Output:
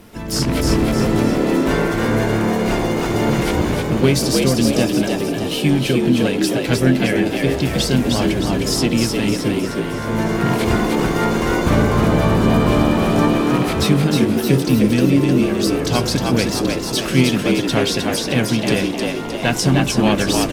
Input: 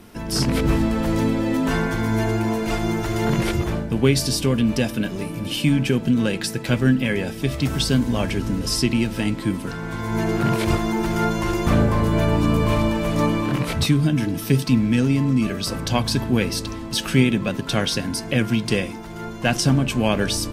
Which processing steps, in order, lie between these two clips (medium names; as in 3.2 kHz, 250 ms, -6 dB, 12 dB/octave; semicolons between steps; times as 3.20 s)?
harmony voices +5 st -9 dB; on a send: frequency-shifting echo 309 ms, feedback 50%, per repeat +73 Hz, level -3.5 dB; on the sum: trim +1.5 dB